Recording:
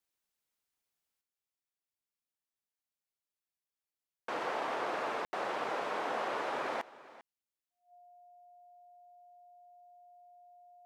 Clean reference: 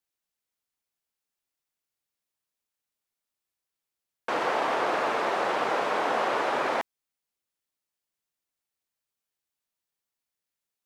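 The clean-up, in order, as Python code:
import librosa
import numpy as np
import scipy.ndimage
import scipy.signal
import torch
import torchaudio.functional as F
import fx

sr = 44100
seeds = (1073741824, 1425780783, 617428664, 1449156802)

y = fx.notch(x, sr, hz=710.0, q=30.0)
y = fx.fix_ambience(y, sr, seeds[0], print_start_s=0.26, print_end_s=0.76, start_s=5.25, end_s=5.33)
y = fx.fix_echo_inverse(y, sr, delay_ms=397, level_db=-18.5)
y = fx.fix_level(y, sr, at_s=1.21, step_db=9.0)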